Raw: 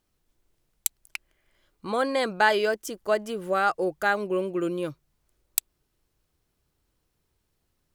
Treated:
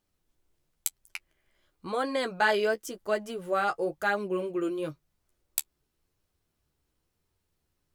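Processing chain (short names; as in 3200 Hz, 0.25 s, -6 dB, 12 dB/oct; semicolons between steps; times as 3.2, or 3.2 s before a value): flange 0.96 Hz, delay 9.8 ms, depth 4.9 ms, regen -22%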